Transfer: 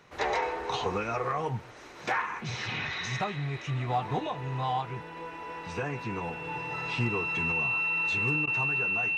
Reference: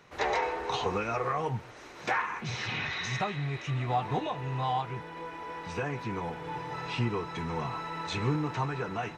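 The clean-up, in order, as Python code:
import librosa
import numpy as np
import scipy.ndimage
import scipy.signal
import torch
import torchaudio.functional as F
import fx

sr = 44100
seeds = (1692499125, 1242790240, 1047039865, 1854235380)

y = fx.fix_declip(x, sr, threshold_db=-19.5)
y = fx.notch(y, sr, hz=2700.0, q=30.0)
y = fx.fix_interpolate(y, sr, at_s=(8.46,), length_ms=12.0)
y = fx.gain(y, sr, db=fx.steps((0.0, 0.0), (7.52, 4.0)))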